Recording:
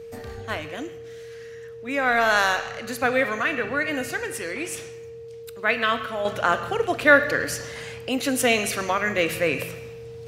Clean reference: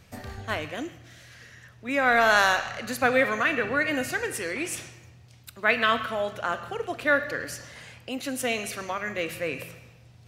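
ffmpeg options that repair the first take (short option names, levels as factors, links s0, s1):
-af "bandreject=f=460:w=30,asetnsamples=n=441:p=0,asendcmd='6.25 volume volume -7.5dB',volume=1"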